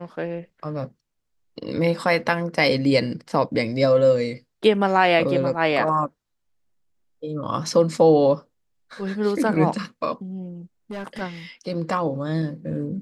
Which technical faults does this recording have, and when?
10.91–11.22 s: clipped -27.5 dBFS

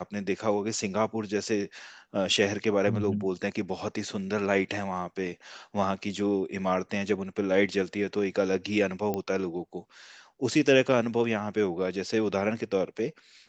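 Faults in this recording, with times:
9.14 s: pop -17 dBFS

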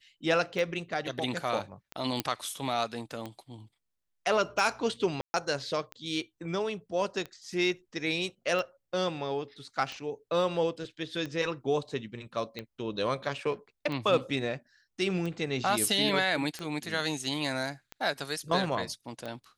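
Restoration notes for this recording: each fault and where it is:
tick 45 rpm
2.20 s: pop -12 dBFS
5.21–5.34 s: dropout 130 ms

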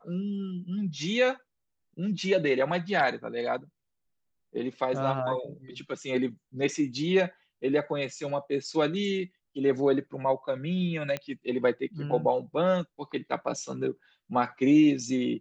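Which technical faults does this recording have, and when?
11.17 s: pop -18 dBFS

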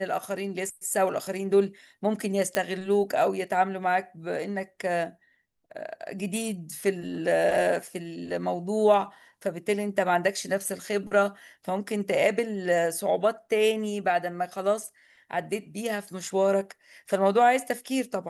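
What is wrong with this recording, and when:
2.55 s: pop -10 dBFS

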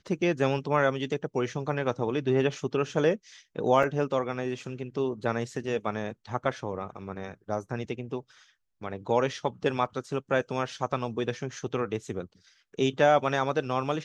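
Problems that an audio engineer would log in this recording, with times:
3.83 s: dropout 3.6 ms

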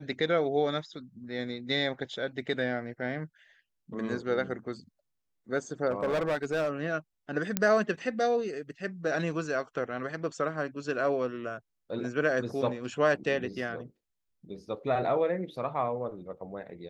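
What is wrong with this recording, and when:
5.91–6.69 s: clipped -24.5 dBFS
7.57 s: pop -9 dBFS

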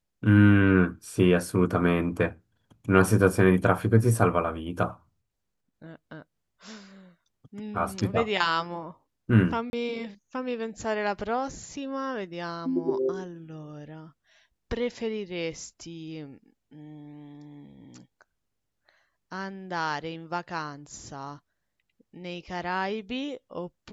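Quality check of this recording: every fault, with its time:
9.70–9.73 s: dropout 31 ms

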